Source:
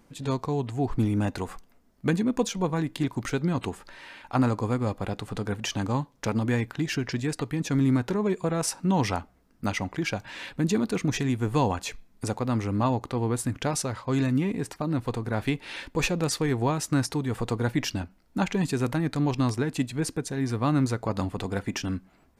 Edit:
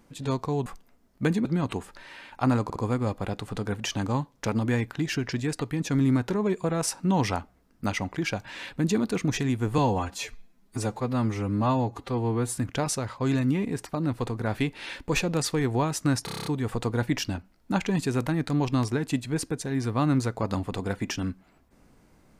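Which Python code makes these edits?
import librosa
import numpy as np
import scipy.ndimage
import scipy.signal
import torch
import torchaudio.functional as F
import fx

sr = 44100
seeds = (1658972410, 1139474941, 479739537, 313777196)

y = fx.edit(x, sr, fx.cut(start_s=0.66, length_s=0.83),
    fx.cut(start_s=2.28, length_s=1.09),
    fx.stutter(start_s=4.56, slice_s=0.06, count=3),
    fx.stretch_span(start_s=11.58, length_s=1.86, factor=1.5),
    fx.stutter(start_s=17.12, slice_s=0.03, count=8), tone=tone)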